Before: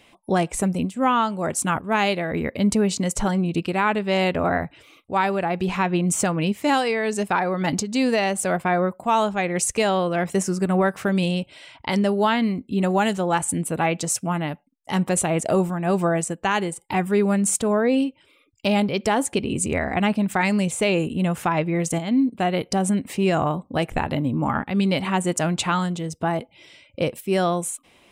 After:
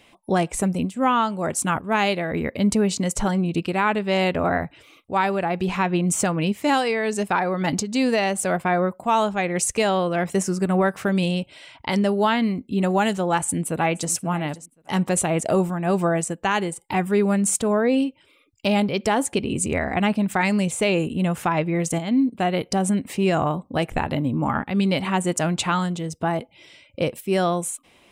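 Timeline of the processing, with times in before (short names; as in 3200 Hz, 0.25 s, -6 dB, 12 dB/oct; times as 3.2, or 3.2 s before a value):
13.38–14.12 echo throw 0.53 s, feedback 15%, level -17 dB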